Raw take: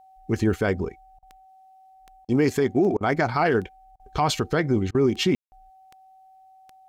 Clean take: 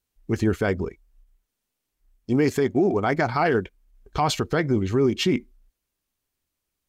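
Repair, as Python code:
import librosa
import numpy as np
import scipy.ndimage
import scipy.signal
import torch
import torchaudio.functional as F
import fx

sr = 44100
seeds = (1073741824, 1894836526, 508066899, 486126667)

y = fx.fix_declick_ar(x, sr, threshold=10.0)
y = fx.notch(y, sr, hz=760.0, q=30.0)
y = fx.fix_ambience(y, sr, seeds[0], print_start_s=1.78, print_end_s=2.28, start_s=5.35, end_s=5.52)
y = fx.fix_interpolate(y, sr, at_s=(1.19, 2.25, 2.97, 3.96, 4.91), length_ms=35.0)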